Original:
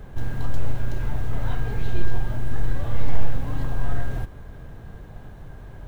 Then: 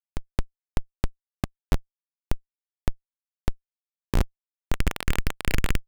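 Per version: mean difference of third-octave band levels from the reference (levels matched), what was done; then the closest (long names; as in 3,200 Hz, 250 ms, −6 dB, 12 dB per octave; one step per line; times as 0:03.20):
23.5 dB: loose part that buzzes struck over −37 dBFS, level −23 dBFS
notch filter 1,000 Hz, Q 13
automatic gain control gain up to 15 dB
comparator with hysteresis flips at −14.5 dBFS
level −7 dB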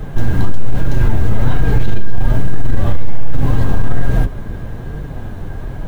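3.0 dB: sub-octave generator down 1 octave, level +2 dB
flanger 1.2 Hz, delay 6.1 ms, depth 4.5 ms, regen −23%
in parallel at −11.5 dB: wave folding −14.5 dBFS
on the sum: boost into a limiter +14.5 dB
level −1 dB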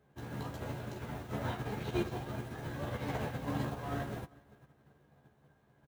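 5.5 dB: high-pass filter 150 Hz 12 dB per octave
double-tracking delay 14 ms −3 dB
repeating echo 394 ms, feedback 40%, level −12 dB
expander for the loud parts 2.5 to 1, over −45 dBFS
level +1 dB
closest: second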